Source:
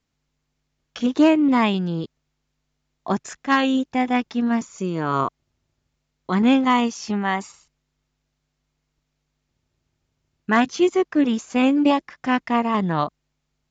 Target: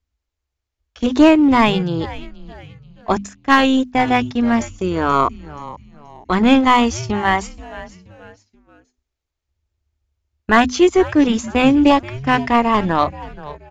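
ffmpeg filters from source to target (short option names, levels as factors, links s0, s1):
-filter_complex "[0:a]agate=range=0.178:threshold=0.0251:ratio=16:detection=peak,bandreject=f=50:t=h:w=6,bandreject=f=100:t=h:w=6,bandreject=f=150:t=h:w=6,bandreject=f=200:t=h:w=6,bandreject=f=250:t=h:w=6,asplit=2[s0][s1];[s1]asoftclip=type=hard:threshold=0.112,volume=0.355[s2];[s0][s2]amix=inputs=2:normalize=0,lowshelf=f=100:t=q:w=3:g=12,asplit=4[s3][s4][s5][s6];[s4]adelay=479,afreqshift=-150,volume=0.15[s7];[s5]adelay=958,afreqshift=-300,volume=0.0569[s8];[s6]adelay=1437,afreqshift=-450,volume=0.0216[s9];[s3][s7][s8][s9]amix=inputs=4:normalize=0,volume=1.78"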